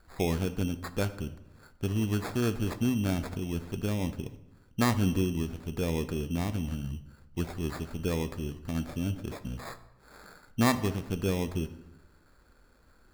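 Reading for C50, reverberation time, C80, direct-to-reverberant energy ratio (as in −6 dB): 14.0 dB, 0.90 s, 16.5 dB, 11.0 dB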